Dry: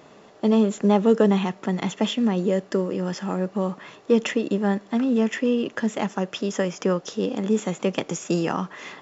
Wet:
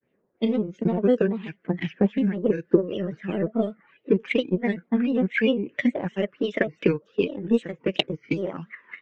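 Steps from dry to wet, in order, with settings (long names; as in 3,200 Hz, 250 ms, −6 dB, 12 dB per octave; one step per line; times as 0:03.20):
mu-law and A-law mismatch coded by mu
noise reduction from a noise print of the clip's start 17 dB
low-pass that shuts in the quiet parts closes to 1,700 Hz, open at −16 dBFS
high-shelf EQ 6,000 Hz +10.5 dB
auto-filter low-pass sine 2.8 Hz 990–2,900 Hz
automatic gain control
flat-topped bell 1,000 Hz −12.5 dB 1.3 octaves
transient designer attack +9 dB, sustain −5 dB
granular cloud, spray 20 ms, pitch spread up and down by 3 semitones
level −9.5 dB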